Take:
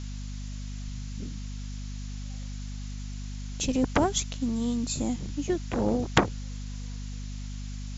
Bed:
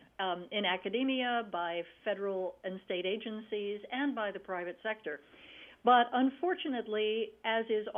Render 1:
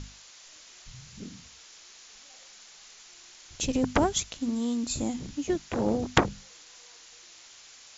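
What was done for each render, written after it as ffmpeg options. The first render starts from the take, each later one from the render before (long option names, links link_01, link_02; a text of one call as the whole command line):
ffmpeg -i in.wav -af "bandreject=frequency=50:width_type=h:width=6,bandreject=frequency=100:width_type=h:width=6,bandreject=frequency=150:width_type=h:width=6,bandreject=frequency=200:width_type=h:width=6,bandreject=frequency=250:width_type=h:width=6" out.wav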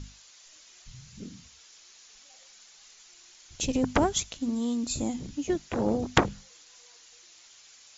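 ffmpeg -i in.wav -af "afftdn=noise_reduction=6:noise_floor=-52" out.wav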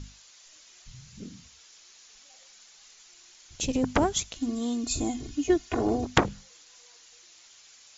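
ffmpeg -i in.wav -filter_complex "[0:a]asettb=1/sr,asplit=3[link_01][link_02][link_03];[link_01]atrim=end=4.364[link_04];[link_02]atrim=start=4.36:end=6.05,asetpts=PTS-STARTPTS,afade=type=in:duration=0.004:curve=qsin,afade=type=out:start_time=1.686:duration=0.004:curve=qsin,aecho=1:1:2.8:0.88,atrim=end_sample=74529[link_05];[link_03]atrim=start=6.046[link_06];[link_04][link_05]acrossfade=duration=0.004:curve1=hsin:curve2=qsin[link_07];[link_07][link_06]acrossfade=duration=0.004:curve1=qsin:curve2=hsin" out.wav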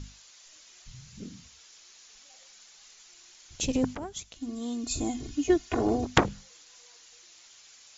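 ffmpeg -i in.wav -filter_complex "[0:a]asplit=2[link_01][link_02];[link_01]atrim=end=3.95,asetpts=PTS-STARTPTS,afade=type=out:start_time=3.946:duration=0.004:curve=hsin:silence=0.149624[link_03];[link_02]atrim=start=3.95,asetpts=PTS-STARTPTS,afade=type=in:duration=1.33:silence=0.149624[link_04];[link_03][link_04]concat=n=2:v=0:a=1" out.wav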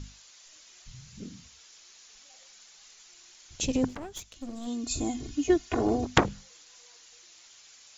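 ffmpeg -i in.wav -filter_complex "[0:a]asplit=3[link_01][link_02][link_03];[link_01]afade=type=out:start_time=3.87:duration=0.02[link_04];[link_02]aeval=exprs='clip(val(0),-1,0.0075)':channel_layout=same,afade=type=in:start_time=3.87:duration=0.02,afade=type=out:start_time=4.66:duration=0.02[link_05];[link_03]afade=type=in:start_time=4.66:duration=0.02[link_06];[link_04][link_05][link_06]amix=inputs=3:normalize=0" out.wav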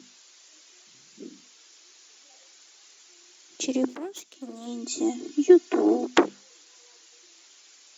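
ffmpeg -i in.wav -af "highpass=frequency=260:width=0.5412,highpass=frequency=260:width=1.3066,equalizer=frequency=340:width=2.3:gain=9.5" out.wav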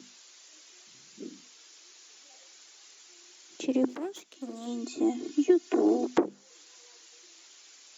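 ffmpeg -i in.wav -filter_complex "[0:a]acrossover=split=800|2600|5300[link_01][link_02][link_03][link_04];[link_01]acompressor=threshold=-20dB:ratio=4[link_05];[link_02]acompressor=threshold=-43dB:ratio=4[link_06];[link_03]acompressor=threshold=-53dB:ratio=4[link_07];[link_04]acompressor=threshold=-53dB:ratio=4[link_08];[link_05][link_06][link_07][link_08]amix=inputs=4:normalize=0" out.wav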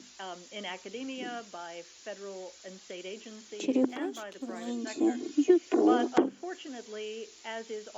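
ffmpeg -i in.wav -i bed.wav -filter_complex "[1:a]volume=-7dB[link_01];[0:a][link_01]amix=inputs=2:normalize=0" out.wav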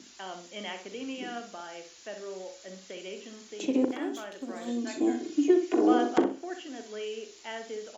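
ffmpeg -i in.wav -filter_complex "[0:a]asplit=2[link_01][link_02];[link_02]adelay=38,volume=-12.5dB[link_03];[link_01][link_03]amix=inputs=2:normalize=0,asplit=2[link_04][link_05];[link_05]adelay=63,lowpass=frequency=2700:poles=1,volume=-7.5dB,asplit=2[link_06][link_07];[link_07]adelay=63,lowpass=frequency=2700:poles=1,volume=0.24,asplit=2[link_08][link_09];[link_09]adelay=63,lowpass=frequency=2700:poles=1,volume=0.24[link_10];[link_06][link_08][link_10]amix=inputs=3:normalize=0[link_11];[link_04][link_11]amix=inputs=2:normalize=0" out.wav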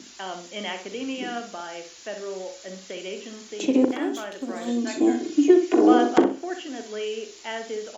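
ffmpeg -i in.wav -af "volume=6.5dB" out.wav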